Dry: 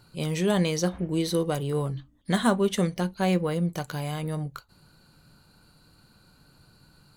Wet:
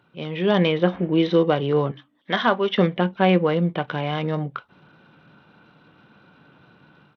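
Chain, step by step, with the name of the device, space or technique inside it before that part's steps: 1.91–2.78 HPF 680 Hz 6 dB/oct; Bluetooth headset (HPF 190 Hz 12 dB/oct; AGC gain up to 9 dB; downsampling 8000 Hz; SBC 64 kbps 32000 Hz)

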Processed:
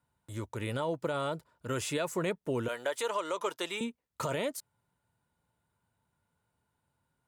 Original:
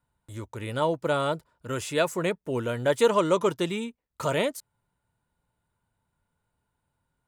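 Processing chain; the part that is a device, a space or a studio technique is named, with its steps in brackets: 2.68–3.81 HPF 590 Hz 12 dB/oct; podcast mastering chain (HPF 71 Hz; compressor 3:1, threshold -27 dBFS, peak gain reduction 7 dB; limiter -22 dBFS, peak gain reduction 5.5 dB; MP3 112 kbps 48000 Hz)

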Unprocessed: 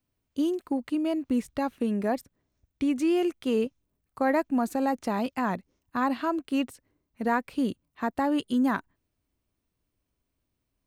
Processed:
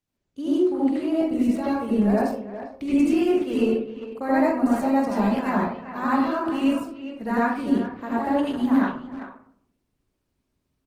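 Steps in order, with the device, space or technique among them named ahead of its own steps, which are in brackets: 0.83–1.72 HPF 49 Hz 24 dB/oct; early reflections 19 ms -15.5 dB, 46 ms -10 dB; speakerphone in a meeting room (reverb RT60 0.60 s, pre-delay 73 ms, DRR -8 dB; speakerphone echo 0.4 s, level -11 dB; AGC gain up to 3.5 dB; gain -7 dB; Opus 16 kbps 48000 Hz)

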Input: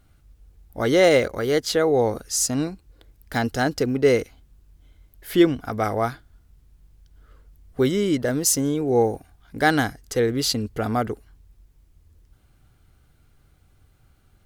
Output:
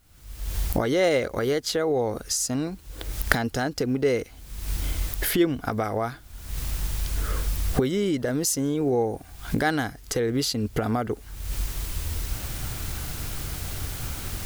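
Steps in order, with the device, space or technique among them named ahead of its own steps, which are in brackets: cheap recorder with automatic gain (white noise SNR 38 dB; recorder AGC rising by 54 dB/s); gain -5.5 dB

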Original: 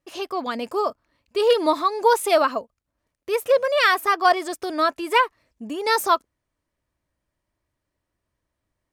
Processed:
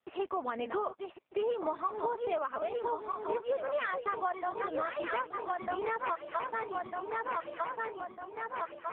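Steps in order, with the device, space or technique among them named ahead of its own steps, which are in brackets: regenerating reverse delay 0.625 s, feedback 68%, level -7 dB; low-pass opened by the level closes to 2400 Hz, open at -14 dBFS; 1.38–2.53 dynamic EQ 6900 Hz, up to -4 dB, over -42 dBFS, Q 0.77; voicemail (BPF 350–2700 Hz; compressor 10:1, threshold -29 dBFS, peak gain reduction 17.5 dB; AMR-NB 5.15 kbps 8000 Hz)

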